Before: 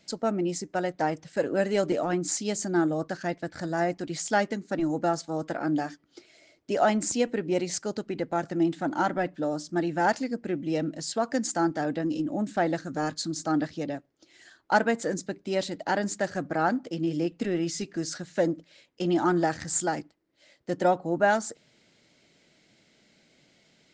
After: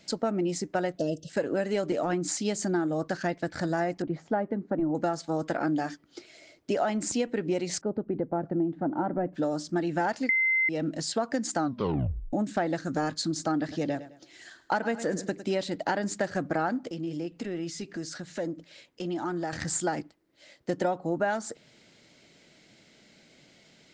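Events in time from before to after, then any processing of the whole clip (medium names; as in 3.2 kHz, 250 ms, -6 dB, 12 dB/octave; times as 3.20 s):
0.98–1.29 s: time-frequency box 680–2600 Hz -29 dB
4.02–4.95 s: low-pass 1 kHz
7.81–9.33 s: Bessel low-pass 630 Hz
10.29–10.69 s: bleep 2.07 kHz -14 dBFS
11.57 s: tape stop 0.76 s
13.58–15.58 s: feedback delay 105 ms, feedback 33%, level -15.5 dB
16.89–19.53 s: compression 2:1, threshold -43 dBFS
whole clip: compression, threshold -29 dBFS; dynamic bell 6.7 kHz, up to -4 dB, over -52 dBFS, Q 1.3; trim +4.5 dB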